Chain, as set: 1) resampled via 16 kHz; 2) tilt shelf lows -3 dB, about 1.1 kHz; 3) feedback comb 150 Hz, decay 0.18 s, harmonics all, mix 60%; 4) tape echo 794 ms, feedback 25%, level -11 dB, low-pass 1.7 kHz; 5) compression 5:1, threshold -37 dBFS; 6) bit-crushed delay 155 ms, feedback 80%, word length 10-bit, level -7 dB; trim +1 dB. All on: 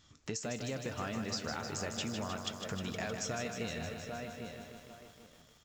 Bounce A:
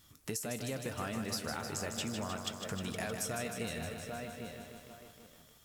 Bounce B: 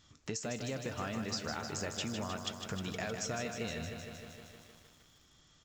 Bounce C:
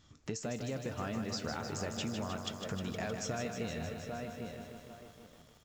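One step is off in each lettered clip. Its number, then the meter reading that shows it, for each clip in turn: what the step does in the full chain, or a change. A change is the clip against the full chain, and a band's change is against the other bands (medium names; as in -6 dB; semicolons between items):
1, 8 kHz band +2.0 dB; 4, momentary loudness spread change -2 LU; 2, momentary loudness spread change -1 LU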